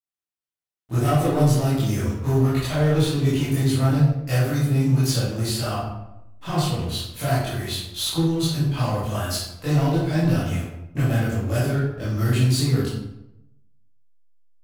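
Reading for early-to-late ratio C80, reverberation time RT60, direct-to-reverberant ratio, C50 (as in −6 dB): 3.5 dB, 0.85 s, −11.0 dB, −0.5 dB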